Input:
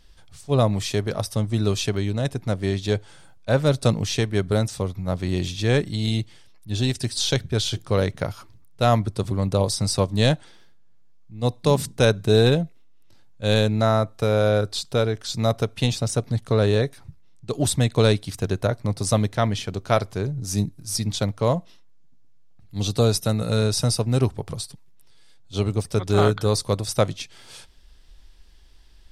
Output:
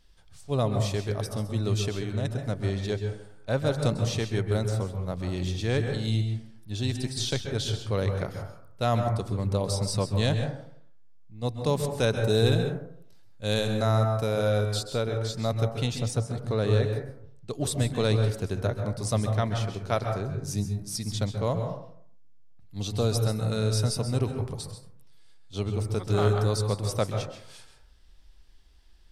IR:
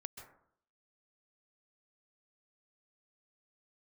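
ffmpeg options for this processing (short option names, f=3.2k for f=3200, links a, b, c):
-filter_complex "[0:a]asettb=1/sr,asplit=3[a][b][c];[a]atrim=end=12.204[d];[b]atrim=start=12.2:end=14.83,asetpts=PTS-STARTPTS,afade=t=in:d=0.004:c=qsin,afade=t=out:st=2.626:d=0.004:c=qsin,highshelf=f=6.6k:g=8[e];[c]atrim=start=14.826[f];[d][e]acrossfade=d=0.004:c1=hsin:c2=qsin[g];[g][f]acrossfade=d=0.004:c1=qsin:c2=hsin[h];[1:a]atrim=start_sample=2205[i];[h][i]afir=irnorm=-1:irlink=0,volume=-2dB"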